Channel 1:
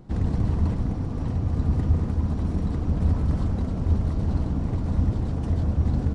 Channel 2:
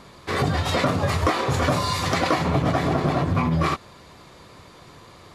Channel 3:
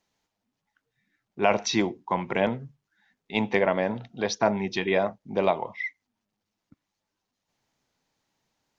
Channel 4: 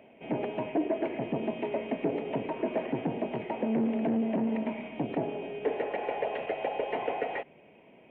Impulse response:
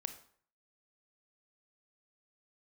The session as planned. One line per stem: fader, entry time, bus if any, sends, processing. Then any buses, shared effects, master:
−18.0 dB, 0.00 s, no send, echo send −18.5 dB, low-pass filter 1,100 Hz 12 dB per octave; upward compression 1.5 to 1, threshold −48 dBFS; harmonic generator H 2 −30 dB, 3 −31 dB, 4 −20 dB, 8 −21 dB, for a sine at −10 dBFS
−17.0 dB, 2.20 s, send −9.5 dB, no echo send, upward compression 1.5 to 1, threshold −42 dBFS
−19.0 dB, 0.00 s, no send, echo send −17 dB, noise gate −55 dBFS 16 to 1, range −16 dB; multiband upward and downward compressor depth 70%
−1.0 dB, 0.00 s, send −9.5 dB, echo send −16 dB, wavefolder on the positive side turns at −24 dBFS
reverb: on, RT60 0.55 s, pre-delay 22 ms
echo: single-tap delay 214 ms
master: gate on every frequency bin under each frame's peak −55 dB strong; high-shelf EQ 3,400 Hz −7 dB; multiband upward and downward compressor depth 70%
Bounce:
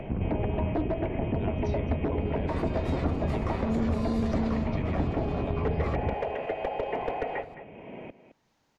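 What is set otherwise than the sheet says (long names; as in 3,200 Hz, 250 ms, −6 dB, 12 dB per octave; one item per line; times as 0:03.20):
stem 1 −18.0 dB → −8.0 dB
reverb return −10.0 dB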